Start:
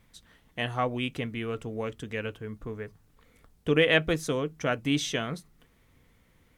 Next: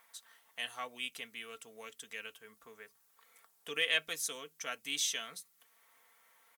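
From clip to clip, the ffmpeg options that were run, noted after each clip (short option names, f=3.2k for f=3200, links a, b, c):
-filter_complex "[0:a]aderivative,aecho=1:1:4.4:0.4,acrossover=split=620|1300[a][b][c];[b]acompressor=mode=upward:threshold=-57dB:ratio=2.5[d];[a][d][c]amix=inputs=3:normalize=0,volume=3dB"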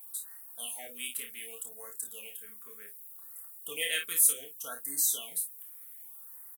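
-af "aexciter=amount=13.2:drive=3.4:freq=8.2k,aecho=1:1:29|53:0.562|0.335,afftfilt=real='re*(1-between(b*sr/1024,700*pow(3000/700,0.5+0.5*sin(2*PI*0.66*pts/sr))/1.41,700*pow(3000/700,0.5+0.5*sin(2*PI*0.66*pts/sr))*1.41))':imag='im*(1-between(b*sr/1024,700*pow(3000/700,0.5+0.5*sin(2*PI*0.66*pts/sr))/1.41,700*pow(3000/700,0.5+0.5*sin(2*PI*0.66*pts/sr))*1.41))':win_size=1024:overlap=0.75,volume=-2.5dB"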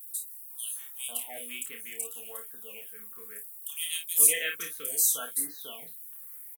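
-filter_complex "[0:a]acrossover=split=3100[a][b];[a]adelay=510[c];[c][b]amix=inputs=2:normalize=0,volume=3.5dB"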